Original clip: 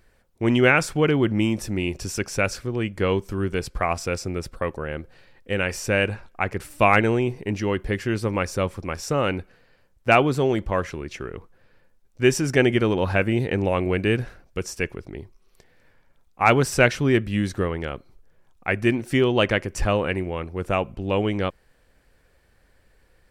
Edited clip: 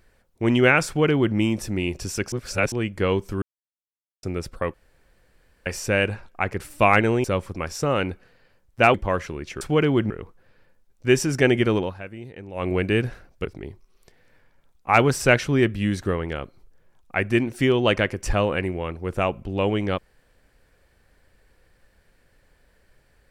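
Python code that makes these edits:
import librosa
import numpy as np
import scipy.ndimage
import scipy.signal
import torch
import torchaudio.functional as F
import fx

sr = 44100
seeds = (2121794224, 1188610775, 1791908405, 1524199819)

y = fx.edit(x, sr, fx.duplicate(start_s=0.87, length_s=0.49, to_s=11.25),
    fx.reverse_span(start_s=2.32, length_s=0.4),
    fx.silence(start_s=3.42, length_s=0.81),
    fx.room_tone_fill(start_s=4.74, length_s=0.92),
    fx.cut(start_s=7.24, length_s=1.28),
    fx.cut(start_s=10.22, length_s=0.36),
    fx.fade_down_up(start_s=12.93, length_s=0.91, db=-16.0, fade_s=0.16),
    fx.cut(start_s=14.6, length_s=0.37), tone=tone)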